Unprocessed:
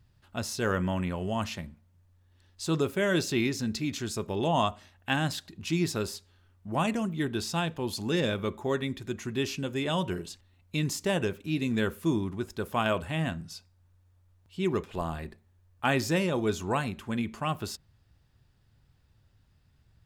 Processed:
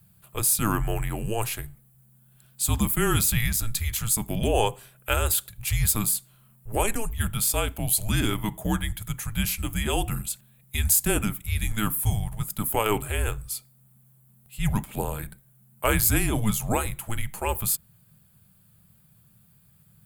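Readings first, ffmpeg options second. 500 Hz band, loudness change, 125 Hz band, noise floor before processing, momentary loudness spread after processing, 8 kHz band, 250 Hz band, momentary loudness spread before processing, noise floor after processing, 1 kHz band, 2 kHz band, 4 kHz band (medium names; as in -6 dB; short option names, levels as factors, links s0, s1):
-0.5 dB, +5.0 dB, +5.5 dB, -65 dBFS, 11 LU, +15.0 dB, -0.5 dB, 11 LU, -59 dBFS, +2.0 dB, +2.0 dB, +3.0 dB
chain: -af "aexciter=amount=9.4:drive=6.5:freq=8400,afreqshift=-220,volume=1.5"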